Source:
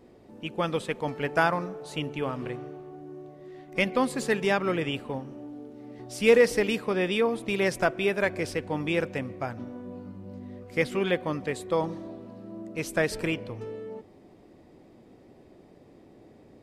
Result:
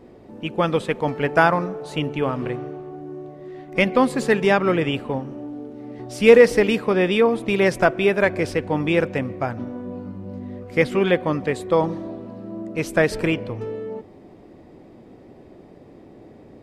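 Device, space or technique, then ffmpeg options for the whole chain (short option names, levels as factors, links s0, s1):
behind a face mask: -af "highshelf=f=3500:g=-7.5,volume=2.51"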